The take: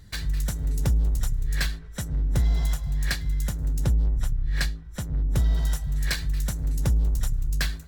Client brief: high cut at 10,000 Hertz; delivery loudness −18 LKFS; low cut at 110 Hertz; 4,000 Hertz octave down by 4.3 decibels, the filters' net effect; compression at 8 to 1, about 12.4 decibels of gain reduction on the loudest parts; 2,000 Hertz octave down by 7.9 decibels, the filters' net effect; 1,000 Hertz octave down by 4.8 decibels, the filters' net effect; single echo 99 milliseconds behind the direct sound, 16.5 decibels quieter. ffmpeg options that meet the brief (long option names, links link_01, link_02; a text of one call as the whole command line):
ffmpeg -i in.wav -af "highpass=110,lowpass=10000,equalizer=frequency=1000:width_type=o:gain=-4,equalizer=frequency=2000:width_type=o:gain=-8,equalizer=frequency=4000:width_type=o:gain=-3,acompressor=threshold=-35dB:ratio=8,aecho=1:1:99:0.15,volume=23dB" out.wav